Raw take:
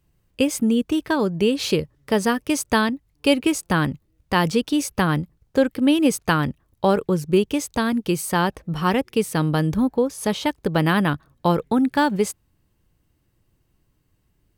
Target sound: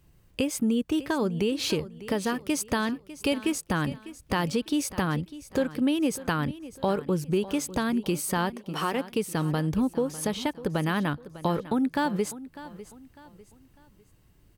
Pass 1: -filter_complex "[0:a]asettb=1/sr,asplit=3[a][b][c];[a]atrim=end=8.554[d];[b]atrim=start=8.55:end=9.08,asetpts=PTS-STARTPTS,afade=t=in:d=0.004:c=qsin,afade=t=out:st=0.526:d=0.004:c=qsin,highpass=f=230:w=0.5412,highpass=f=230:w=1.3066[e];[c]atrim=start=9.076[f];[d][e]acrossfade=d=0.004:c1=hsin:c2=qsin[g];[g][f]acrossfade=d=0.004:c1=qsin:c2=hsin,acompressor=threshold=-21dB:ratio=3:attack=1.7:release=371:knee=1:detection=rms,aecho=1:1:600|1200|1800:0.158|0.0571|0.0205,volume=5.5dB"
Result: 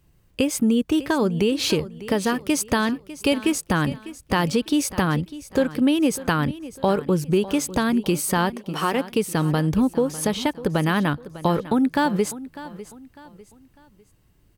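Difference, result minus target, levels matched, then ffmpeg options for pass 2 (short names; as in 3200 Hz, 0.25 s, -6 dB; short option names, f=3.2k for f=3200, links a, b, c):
compressor: peak gain reduction -5.5 dB
-filter_complex "[0:a]asettb=1/sr,asplit=3[a][b][c];[a]atrim=end=8.554[d];[b]atrim=start=8.55:end=9.08,asetpts=PTS-STARTPTS,afade=t=in:d=0.004:c=qsin,afade=t=out:st=0.526:d=0.004:c=qsin,highpass=f=230:w=0.5412,highpass=f=230:w=1.3066[e];[c]atrim=start=9.076[f];[d][e]acrossfade=d=0.004:c1=hsin:c2=qsin[g];[g][f]acrossfade=d=0.004:c1=qsin:c2=hsin,acompressor=threshold=-29.5dB:ratio=3:attack=1.7:release=371:knee=1:detection=rms,aecho=1:1:600|1200|1800:0.158|0.0571|0.0205,volume=5.5dB"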